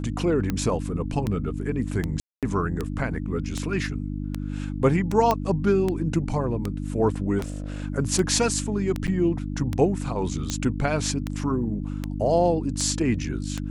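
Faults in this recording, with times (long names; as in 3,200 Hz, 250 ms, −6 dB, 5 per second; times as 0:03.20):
mains hum 50 Hz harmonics 6 −30 dBFS
scratch tick 78 rpm −13 dBFS
0:02.20–0:02.43: drop-out 227 ms
0:05.31: click −8 dBFS
0:07.38–0:07.84: clipping −26.5 dBFS
0:09.07–0:09.08: drop-out 7.8 ms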